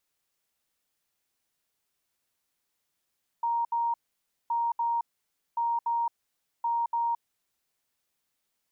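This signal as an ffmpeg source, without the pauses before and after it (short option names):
-f lavfi -i "aevalsrc='0.0596*sin(2*PI*935*t)*clip(min(mod(mod(t,1.07),0.29),0.22-mod(mod(t,1.07),0.29))/0.005,0,1)*lt(mod(t,1.07),0.58)':d=4.28:s=44100"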